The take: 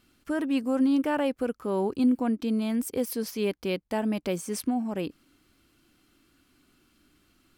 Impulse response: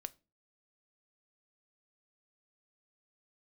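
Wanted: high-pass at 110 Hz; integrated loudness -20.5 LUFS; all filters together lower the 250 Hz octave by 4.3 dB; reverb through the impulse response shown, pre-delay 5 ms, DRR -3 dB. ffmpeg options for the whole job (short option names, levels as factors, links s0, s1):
-filter_complex "[0:a]highpass=110,equalizer=f=250:t=o:g=-4.5,asplit=2[s0][s1];[1:a]atrim=start_sample=2205,adelay=5[s2];[s1][s2]afir=irnorm=-1:irlink=0,volume=2.11[s3];[s0][s3]amix=inputs=2:normalize=0,volume=1.88"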